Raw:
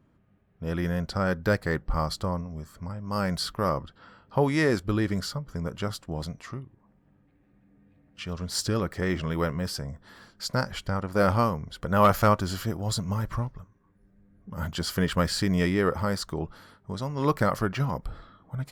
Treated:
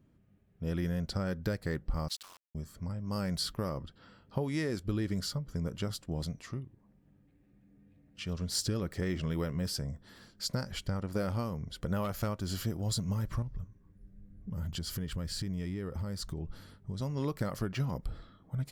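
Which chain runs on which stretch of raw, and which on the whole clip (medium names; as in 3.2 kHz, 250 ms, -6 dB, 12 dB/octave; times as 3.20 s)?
2.08–2.55 s: high-pass 1.5 kHz 24 dB/octave + word length cut 8-bit, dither none + loudspeaker Doppler distortion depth 0.31 ms
13.42–17.01 s: bass shelf 130 Hz +12 dB + compression 5:1, threshold -32 dBFS
whole clip: compression 6:1, threshold -26 dBFS; peaking EQ 1.1 kHz -8.5 dB 1.9 oct; trim -1 dB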